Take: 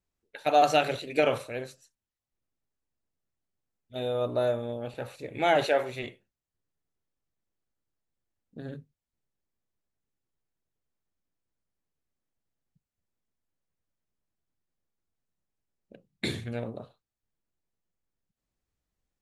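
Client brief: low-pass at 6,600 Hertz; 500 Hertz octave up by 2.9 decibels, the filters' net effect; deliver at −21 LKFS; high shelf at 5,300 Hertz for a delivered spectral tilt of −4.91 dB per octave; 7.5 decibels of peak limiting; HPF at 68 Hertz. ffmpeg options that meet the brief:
ffmpeg -i in.wav -af "highpass=68,lowpass=6600,equalizer=frequency=500:width_type=o:gain=3.5,highshelf=frequency=5300:gain=7,volume=8dB,alimiter=limit=-7.5dB:level=0:latency=1" out.wav

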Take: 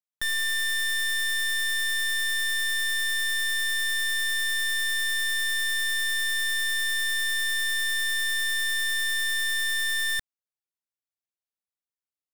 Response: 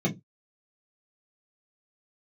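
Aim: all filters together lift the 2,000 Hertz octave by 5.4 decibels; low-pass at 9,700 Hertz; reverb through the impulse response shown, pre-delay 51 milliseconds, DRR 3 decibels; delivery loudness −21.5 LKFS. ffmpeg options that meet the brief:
-filter_complex "[0:a]lowpass=9700,equalizer=frequency=2000:width_type=o:gain=6,asplit=2[link_01][link_02];[1:a]atrim=start_sample=2205,adelay=51[link_03];[link_02][link_03]afir=irnorm=-1:irlink=0,volume=-12.5dB[link_04];[link_01][link_04]amix=inputs=2:normalize=0,volume=-3.5dB"

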